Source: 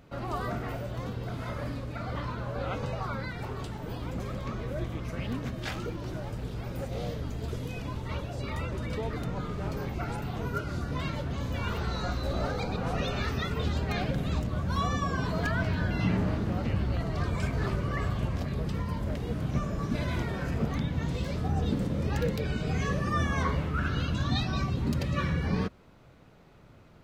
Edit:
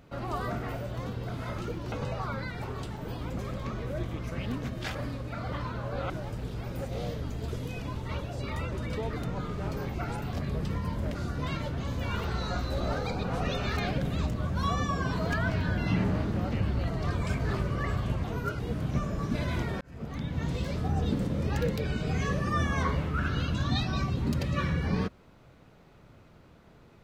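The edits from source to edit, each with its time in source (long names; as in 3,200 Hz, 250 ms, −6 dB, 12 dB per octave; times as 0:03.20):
0:01.58–0:02.73: swap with 0:05.76–0:06.10
0:10.33–0:10.68: swap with 0:18.37–0:19.19
0:13.30–0:13.90: remove
0:20.41–0:21.06: fade in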